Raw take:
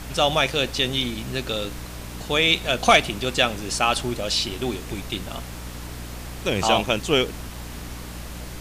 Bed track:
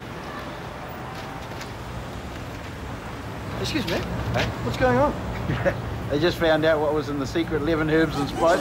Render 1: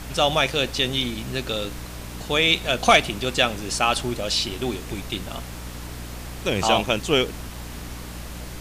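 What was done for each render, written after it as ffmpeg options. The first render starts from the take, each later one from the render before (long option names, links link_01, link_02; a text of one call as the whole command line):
ffmpeg -i in.wav -af anull out.wav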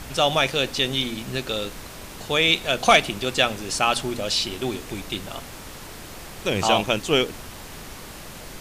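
ffmpeg -i in.wav -af "bandreject=frequency=60:width_type=h:width=4,bandreject=frequency=120:width_type=h:width=4,bandreject=frequency=180:width_type=h:width=4,bandreject=frequency=240:width_type=h:width=4,bandreject=frequency=300:width_type=h:width=4" out.wav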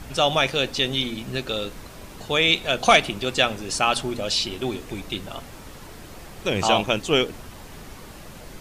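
ffmpeg -i in.wav -af "afftdn=noise_reduction=6:noise_floor=-40" out.wav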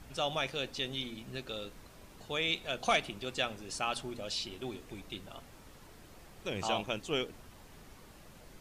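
ffmpeg -i in.wav -af "volume=-13.5dB" out.wav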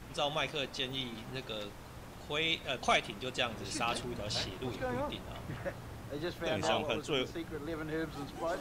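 ffmpeg -i in.wav -i bed.wav -filter_complex "[1:a]volume=-17dB[link_01];[0:a][link_01]amix=inputs=2:normalize=0" out.wav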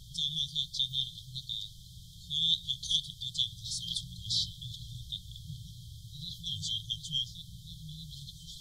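ffmpeg -i in.wav -af "equalizer=frequency=1800:width_type=o:width=3:gain=11.5,afftfilt=real='re*(1-between(b*sr/4096,180,3100))':imag='im*(1-between(b*sr/4096,180,3100))':win_size=4096:overlap=0.75" out.wav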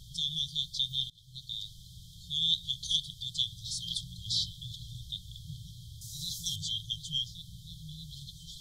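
ffmpeg -i in.wav -filter_complex "[0:a]asettb=1/sr,asplit=3[link_01][link_02][link_03];[link_01]atrim=end=6.014[link_04];[link_02]atrim=start=6.01:end=6.56,asetpts=PTS-STARTPTS,afade=type=in:duration=0.004:curve=qsin,afade=type=out:start_time=0.546:duration=0.004:curve=qsin,highshelf=frequency=4300:width_type=q:width=1.5:gain=13.5[link_05];[link_03]atrim=start=6.556[link_06];[link_04][link_05]acrossfade=duration=0.004:curve1=hsin:curve2=qsin[link_07];[link_07][link_06]acrossfade=duration=0.004:curve1=qsin:curve2=hsin,asplit=2[link_08][link_09];[link_08]atrim=end=1.1,asetpts=PTS-STARTPTS,afade=type=out:start_time=1.096:duration=0.004:curve=hsin:silence=0.0944061[link_10];[link_09]atrim=start=1.1,asetpts=PTS-STARTPTS,afade=type=in:duration=0.52:silence=0.0944061[link_11];[link_10][link_11]concat=n=2:v=0:a=1" out.wav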